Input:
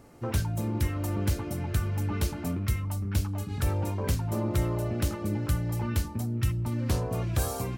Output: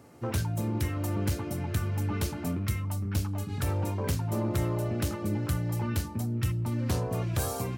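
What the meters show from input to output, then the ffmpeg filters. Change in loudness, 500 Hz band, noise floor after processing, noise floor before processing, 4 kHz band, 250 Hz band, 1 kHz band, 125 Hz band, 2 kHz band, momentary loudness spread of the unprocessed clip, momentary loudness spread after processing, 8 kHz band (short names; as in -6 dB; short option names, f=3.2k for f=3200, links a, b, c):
-1.0 dB, 0.0 dB, -37 dBFS, -37 dBFS, -0.5 dB, 0.0 dB, 0.0 dB, -1.0 dB, -0.5 dB, 2 LU, 2 LU, -0.5 dB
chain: -af "highpass=f=74:w=0.5412,highpass=f=74:w=1.3066,aeval=exprs='clip(val(0),-1,0.0708)':c=same"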